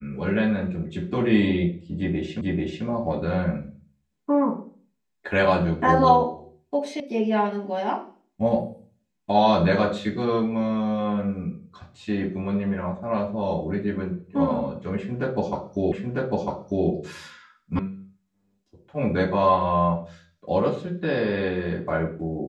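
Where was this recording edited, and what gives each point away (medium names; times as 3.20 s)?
2.41 s: repeat of the last 0.44 s
7.00 s: sound stops dead
15.92 s: repeat of the last 0.95 s
17.79 s: sound stops dead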